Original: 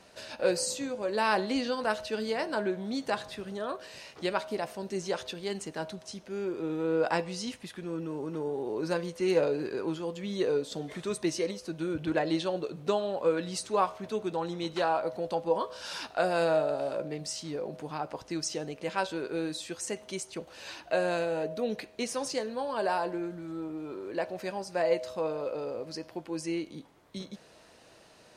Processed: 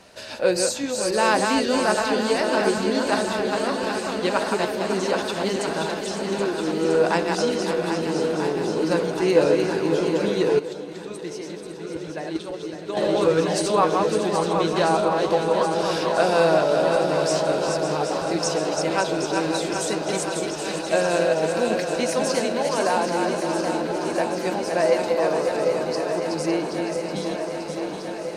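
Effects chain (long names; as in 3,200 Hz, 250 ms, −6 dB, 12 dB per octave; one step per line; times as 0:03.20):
feedback delay that plays each chunk backwards 278 ms, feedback 55%, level −4 dB
feedback echo with a long and a short gap by turns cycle 1,293 ms, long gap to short 1.5 to 1, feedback 67%, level −8 dB
0:10.59–0:12.97: noise gate −22 dBFS, range −11 dB
level +6.5 dB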